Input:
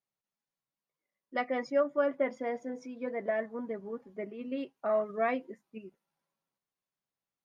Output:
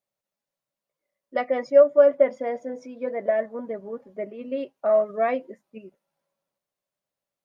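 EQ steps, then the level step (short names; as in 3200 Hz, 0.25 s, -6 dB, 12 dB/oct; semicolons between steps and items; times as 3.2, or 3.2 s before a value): bell 580 Hz +11.5 dB 0.4 oct; +2.5 dB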